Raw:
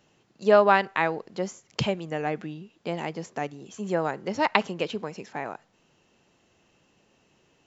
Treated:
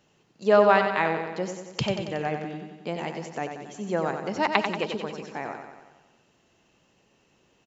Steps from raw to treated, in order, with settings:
repeating echo 92 ms, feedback 60%, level −7 dB
level −1 dB

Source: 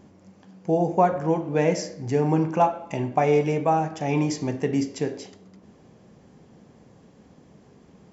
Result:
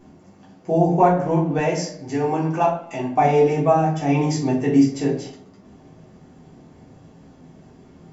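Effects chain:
0:01.58–0:03.17: low-shelf EQ 360 Hz −9 dB
rectangular room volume 180 cubic metres, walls furnished, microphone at 3.5 metres
level −3.5 dB

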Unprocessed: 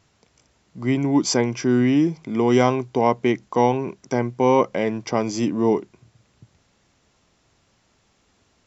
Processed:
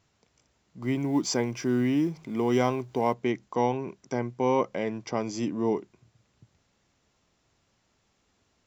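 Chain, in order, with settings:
0:00.82–0:03.14: mu-law and A-law mismatch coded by mu
level −7.5 dB

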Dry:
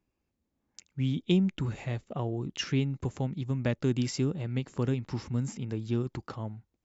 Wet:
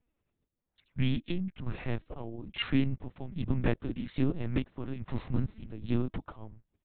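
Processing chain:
square-wave tremolo 1.2 Hz, depth 65%, duty 55%
pitch-shifted copies added −5 semitones −5 dB, −3 semitones −13 dB
linear-prediction vocoder at 8 kHz pitch kept

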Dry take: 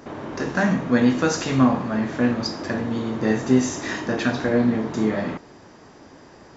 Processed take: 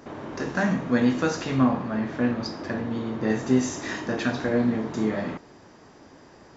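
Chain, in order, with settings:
0:01.30–0:03.30: high-frequency loss of the air 83 metres
level −3.5 dB

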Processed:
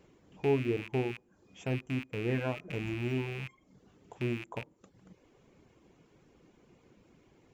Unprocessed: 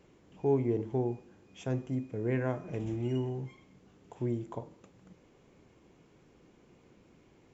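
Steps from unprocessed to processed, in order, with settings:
loose part that buzzes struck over −44 dBFS, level −28 dBFS
dynamic equaliser 4,300 Hz, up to −4 dB, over −58 dBFS, Q 1.2
reverb reduction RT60 0.53 s

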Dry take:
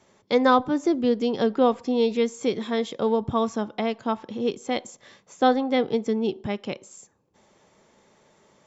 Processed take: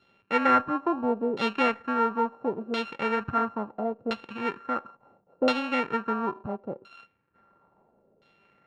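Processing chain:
samples sorted by size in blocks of 32 samples
auto-filter low-pass saw down 0.73 Hz 460–3,700 Hz
level −6 dB

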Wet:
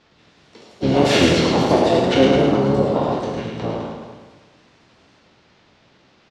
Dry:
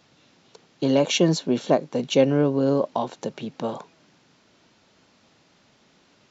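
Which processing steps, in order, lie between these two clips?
peak hold with a decay on every bin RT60 0.71 s
low-pass filter 5,300 Hz 24 dB per octave
mains-hum notches 50/100/150/200/250 Hz
on a send: repeating echo 107 ms, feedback 59%, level −3.5 dB
on the sum: delay with pitch and tempo change per echo 183 ms, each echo +4 semitones, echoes 3, each echo −6 dB
pitch-shifted copies added −12 semitones −4 dB, −5 semitones −3 dB, +5 semitones −11 dB
level −2 dB

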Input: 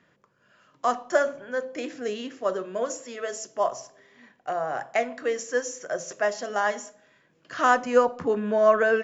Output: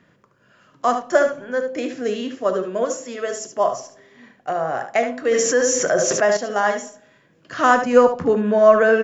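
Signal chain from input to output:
low-shelf EQ 370 Hz +6 dB
single-tap delay 73 ms −9 dB
0:05.31–0:06.37: envelope flattener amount 70%
level +4 dB

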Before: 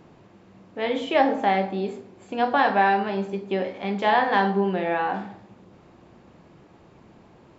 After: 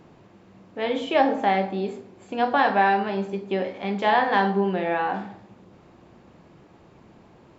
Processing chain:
0:00.83–0:01.37: notch filter 2,000 Hz, Q 13

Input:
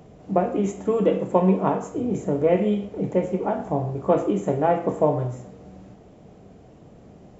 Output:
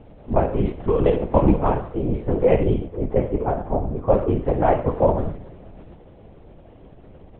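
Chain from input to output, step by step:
linear-prediction vocoder at 8 kHz whisper
0:02.63–0:04.45: high-shelf EQ 2,900 Hz −10.5 dB
level +2.5 dB

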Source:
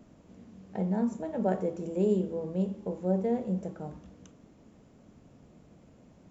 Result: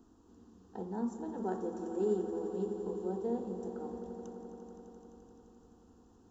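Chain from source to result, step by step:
phaser with its sweep stopped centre 590 Hz, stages 6
echo that builds up and dies away 86 ms, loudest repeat 5, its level −14 dB
level −2.5 dB

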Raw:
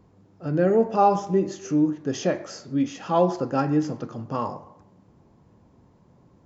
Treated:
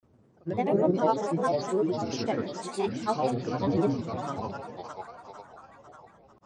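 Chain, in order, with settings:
echo with a time of its own for lows and highs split 530 Hz, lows 116 ms, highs 509 ms, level −3.5 dB
granular cloud 100 ms, grains 20 per second, pitch spread up and down by 7 semitones
dynamic equaliser 4,400 Hz, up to +5 dB, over −49 dBFS, Q 1.2
level −5.5 dB

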